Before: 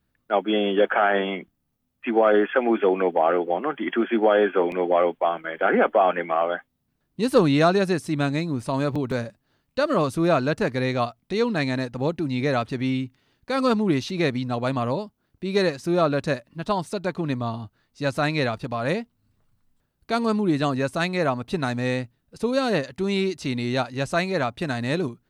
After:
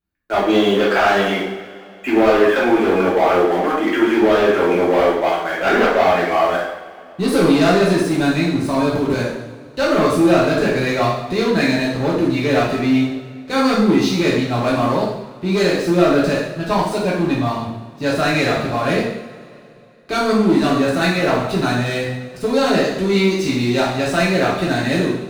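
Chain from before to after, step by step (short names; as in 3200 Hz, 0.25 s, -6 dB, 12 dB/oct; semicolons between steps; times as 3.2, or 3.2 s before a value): sample leveller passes 3; two-slope reverb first 0.72 s, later 2.8 s, from -18 dB, DRR -6.5 dB; gain -8.5 dB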